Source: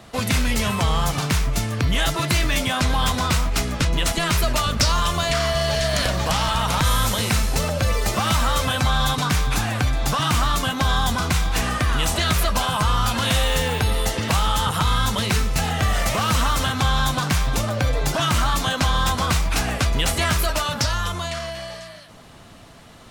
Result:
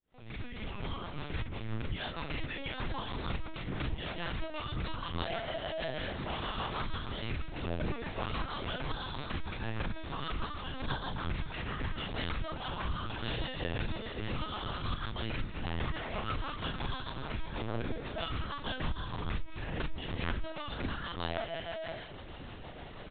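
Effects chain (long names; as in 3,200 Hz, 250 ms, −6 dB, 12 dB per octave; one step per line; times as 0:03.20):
fade in at the beginning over 3.91 s
0:18.73–0:20.87: low-shelf EQ 72 Hz +8.5 dB
downward compressor 8 to 1, threshold −33 dBFS, peak gain reduction 20 dB
rotating-speaker cabinet horn 6.3 Hz
double-tracking delay 37 ms −3 dB
convolution reverb, pre-delay 35 ms, DRR 15 dB
linear-prediction vocoder at 8 kHz pitch kept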